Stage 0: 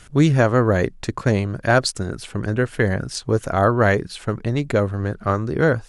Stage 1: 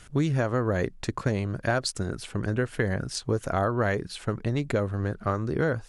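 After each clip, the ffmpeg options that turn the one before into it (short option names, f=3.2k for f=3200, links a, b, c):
-af "acompressor=threshold=-17dB:ratio=6,volume=-4dB"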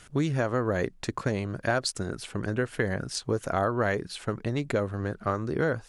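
-af "lowshelf=f=120:g=-7"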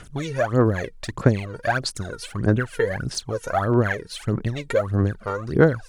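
-af "aphaser=in_gain=1:out_gain=1:delay=2.2:decay=0.78:speed=1.6:type=sinusoidal"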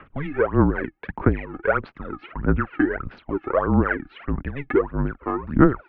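-af "highpass=f=170:t=q:w=0.5412,highpass=f=170:t=q:w=1.307,lowpass=f=2.6k:t=q:w=0.5176,lowpass=f=2.6k:t=q:w=0.7071,lowpass=f=2.6k:t=q:w=1.932,afreqshift=-150,volume=2dB"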